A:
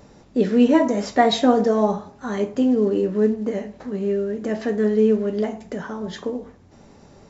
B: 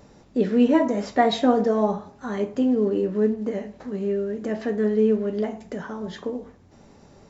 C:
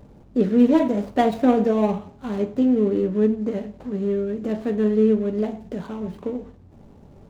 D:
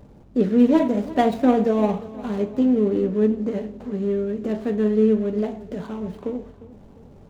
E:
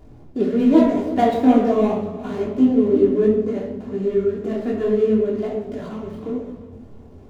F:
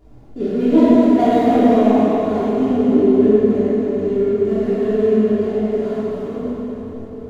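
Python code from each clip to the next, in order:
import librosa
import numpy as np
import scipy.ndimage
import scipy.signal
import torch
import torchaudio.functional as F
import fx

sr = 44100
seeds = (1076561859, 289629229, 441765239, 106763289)

y1 = fx.dynamic_eq(x, sr, hz=6800.0, q=0.79, threshold_db=-47.0, ratio=4.0, max_db=-5)
y1 = F.gain(torch.from_numpy(y1), -2.5).numpy()
y2 = scipy.ndimage.median_filter(y1, 25, mode='constant')
y2 = fx.low_shelf(y2, sr, hz=170.0, db=8.5)
y3 = fx.echo_feedback(y2, sr, ms=353, feedback_pct=49, wet_db=-17.5)
y4 = fx.room_shoebox(y3, sr, seeds[0], volume_m3=3800.0, walls='furnished', distance_m=3.2)
y4 = fx.detune_double(y4, sr, cents=42)
y4 = F.gain(torch.from_numpy(y4), 2.5).numpy()
y5 = fx.rev_plate(y4, sr, seeds[1], rt60_s=4.2, hf_ratio=0.8, predelay_ms=0, drr_db=-9.0)
y5 = F.gain(torch.from_numpy(y5), -6.0).numpy()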